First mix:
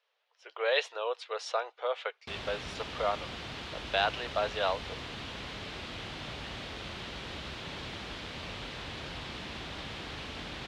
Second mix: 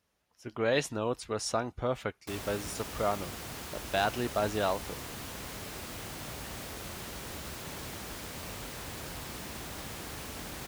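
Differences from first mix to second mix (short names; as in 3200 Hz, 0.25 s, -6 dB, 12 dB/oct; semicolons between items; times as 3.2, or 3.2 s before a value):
speech: remove elliptic high-pass 460 Hz, stop band 50 dB; master: remove synth low-pass 3500 Hz, resonance Q 2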